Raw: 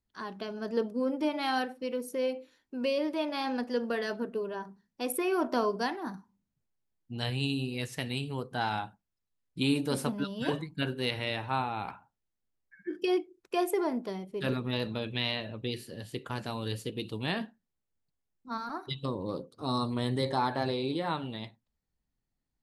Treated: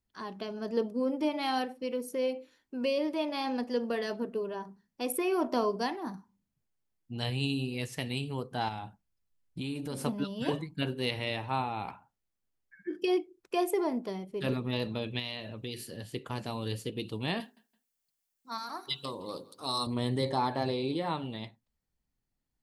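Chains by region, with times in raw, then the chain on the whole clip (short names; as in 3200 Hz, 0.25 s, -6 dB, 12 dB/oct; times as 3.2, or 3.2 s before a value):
8.68–10.01 low shelf 120 Hz +7.5 dB + compressor 4:1, threshold -34 dBFS
15.19–15.97 high shelf 4000 Hz +7 dB + compressor 2:1, threshold -37 dBFS
17.4–19.87 tilt +3.5 dB/oct + notches 50/100/150/200/250/300/350/400/450/500 Hz + feedback echo 0.166 s, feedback 29%, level -21 dB
whole clip: notch 3800 Hz, Q 28; dynamic EQ 1500 Hz, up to -7 dB, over -54 dBFS, Q 3.5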